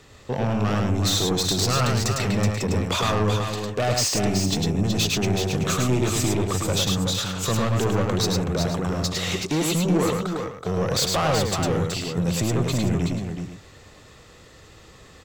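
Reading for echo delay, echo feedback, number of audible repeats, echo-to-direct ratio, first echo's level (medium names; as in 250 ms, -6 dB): 104 ms, no regular repeats, 3, -1.5 dB, -3.5 dB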